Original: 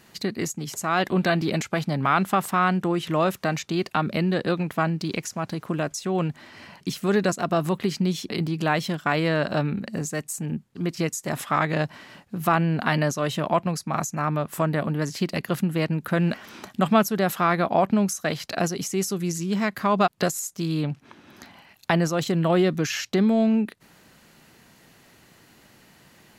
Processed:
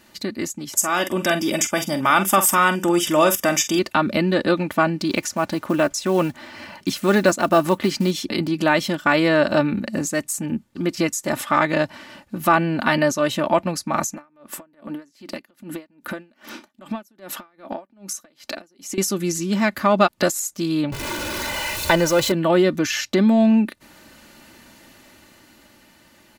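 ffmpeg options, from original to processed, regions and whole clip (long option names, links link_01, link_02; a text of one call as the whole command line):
ffmpeg -i in.wav -filter_complex "[0:a]asettb=1/sr,asplit=3[link_01][link_02][link_03];[link_01]atrim=end=0.774[link_04];[link_02]atrim=start=0.77:end=3.79,asetpts=PTS-STARTPTS,afade=type=in:duration=0.004:curve=qsin,afade=type=out:start_time=3.016:duration=0.004:curve=qsin,asuperstop=centerf=4200:order=20:qfactor=5,bass=frequency=250:gain=-3,treble=frequency=4000:gain=14,asplit=2[link_05][link_06];[link_06]adelay=46,volume=-11dB[link_07];[link_05][link_07]amix=inputs=2:normalize=0,atrim=end_sample=133182[link_08];[link_03]atrim=start=3.786[link_09];[link_04][link_08]acrossfade=duration=0.004:curve1=hsin:curve2=qsin[link_10];[link_10][link_09]acrossfade=duration=0.004:curve1=qsin:curve2=hsin,asettb=1/sr,asplit=3[link_11][link_12][link_13];[link_11]atrim=end=5.104[link_14];[link_12]atrim=start=5.1:end=8.11,asetpts=PTS-STARTPTS,afade=type=in:duration=0.004:curve=qsin,afade=type=out:start_time=3.006:duration=0.004:curve=qsin,equalizer=frequency=1000:width_type=o:width=2.8:gain=2.5,acrusher=bits=7:mode=log:mix=0:aa=0.000001[link_15];[link_13]atrim=start=8.106[link_16];[link_14][link_15]acrossfade=duration=0.004:curve1=hsin:curve2=qsin[link_17];[link_17][link_16]acrossfade=duration=0.004:curve1=qsin:curve2=hsin,asettb=1/sr,asplit=3[link_18][link_19][link_20];[link_18]atrim=end=14.124[link_21];[link_19]atrim=start=14.12:end=18.98,asetpts=PTS-STARTPTS,afade=type=in:duration=0.004:curve=qsin,afade=type=out:start_time=4.856:duration=0.004:curve=qsin,lowshelf=frequency=180:width_type=q:width=1.5:gain=-7,acompressor=threshold=-30dB:ratio=16:attack=3.2:release=140:knee=1:detection=peak,aeval=exprs='val(0)*pow(10,-31*(0.5-0.5*cos(2*PI*2.5*n/s))/20)':channel_layout=same[link_22];[link_20]atrim=start=18.976[link_23];[link_21][link_22]acrossfade=duration=0.004:curve1=hsin:curve2=qsin[link_24];[link_24][link_23]acrossfade=duration=0.004:curve1=qsin:curve2=hsin,asettb=1/sr,asplit=3[link_25][link_26][link_27];[link_25]atrim=end=20.924[link_28];[link_26]atrim=start=20.92:end=22.32,asetpts=PTS-STARTPTS,afade=type=in:duration=0.004:curve=qsin,afade=type=out:start_time=1.396:duration=0.004:curve=qsin,aeval=exprs='val(0)+0.5*0.0473*sgn(val(0))':channel_layout=same,aecho=1:1:2:0.61,atrim=end_sample=61740[link_29];[link_27]atrim=start=22.316[link_30];[link_28][link_29]acrossfade=duration=0.004:curve1=hsin:curve2=qsin[link_31];[link_31][link_30]acrossfade=duration=0.004:curve1=qsin:curve2=hsin,aecho=1:1:3.4:0.57,dynaudnorm=framelen=250:gausssize=13:maxgain=7dB" out.wav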